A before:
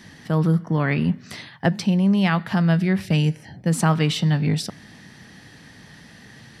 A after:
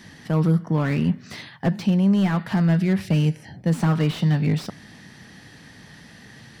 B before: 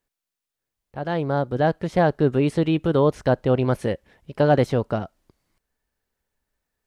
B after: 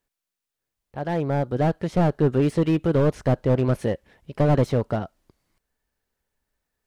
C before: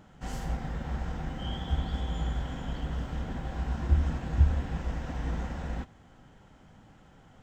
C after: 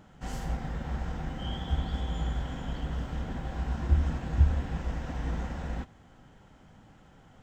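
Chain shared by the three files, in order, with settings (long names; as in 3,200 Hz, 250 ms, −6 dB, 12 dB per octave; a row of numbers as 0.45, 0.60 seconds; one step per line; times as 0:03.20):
slew-rate limiting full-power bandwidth 71 Hz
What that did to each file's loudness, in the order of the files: −0.5, −1.0, 0.0 LU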